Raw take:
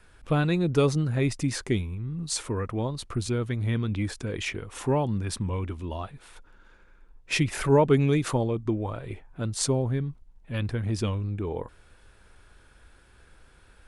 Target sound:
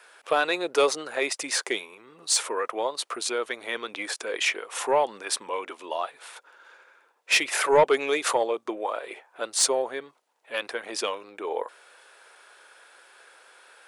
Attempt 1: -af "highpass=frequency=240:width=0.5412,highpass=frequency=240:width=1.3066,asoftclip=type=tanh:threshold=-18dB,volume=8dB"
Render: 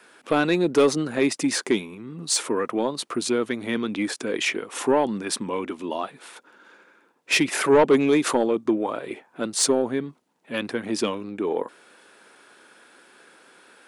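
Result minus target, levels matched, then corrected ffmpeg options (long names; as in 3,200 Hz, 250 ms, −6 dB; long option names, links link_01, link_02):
250 Hz band +12.0 dB
-af "highpass=frequency=490:width=0.5412,highpass=frequency=490:width=1.3066,asoftclip=type=tanh:threshold=-18dB,volume=8dB"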